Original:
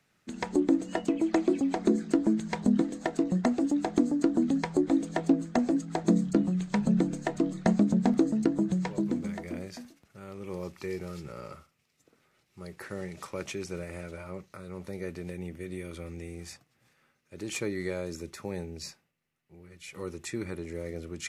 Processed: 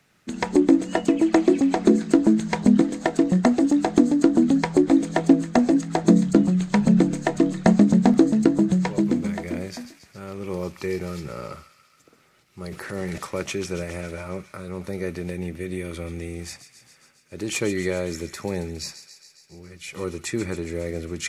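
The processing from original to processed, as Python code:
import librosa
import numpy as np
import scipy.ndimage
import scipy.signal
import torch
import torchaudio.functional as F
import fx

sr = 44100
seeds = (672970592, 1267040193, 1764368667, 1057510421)

y = fx.echo_wet_highpass(x, sr, ms=137, feedback_pct=70, hz=1900.0, wet_db=-11.0)
y = fx.transient(y, sr, attack_db=-4, sustain_db=9, at=(12.63, 13.18))
y = y * librosa.db_to_amplitude(8.0)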